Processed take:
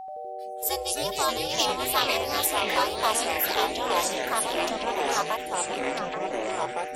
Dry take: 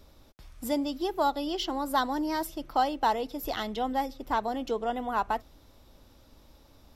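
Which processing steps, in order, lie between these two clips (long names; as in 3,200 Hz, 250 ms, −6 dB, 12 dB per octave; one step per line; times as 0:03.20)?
noise reduction from a noise print of the clip's start 26 dB
echo through a band-pass that steps 416 ms, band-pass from 3,300 Hz, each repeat −1.4 octaves, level −3.5 dB
ring modulation 220 Hz
spectral tilt +4 dB per octave
steady tone 760 Hz −39 dBFS
delay with pitch and tempo change per echo 82 ms, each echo −4 semitones, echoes 3
level +3 dB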